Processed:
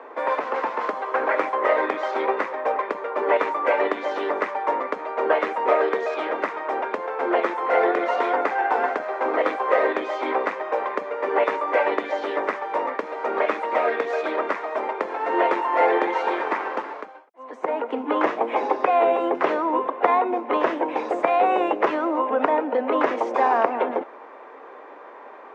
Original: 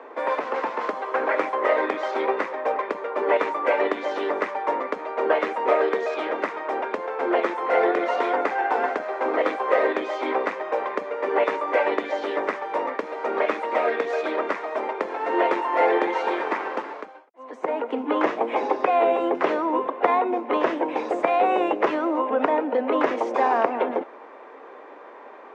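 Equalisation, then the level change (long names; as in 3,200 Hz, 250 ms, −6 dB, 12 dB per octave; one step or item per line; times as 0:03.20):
parametric band 1,100 Hz +3.5 dB 2.2 octaves
−1.5 dB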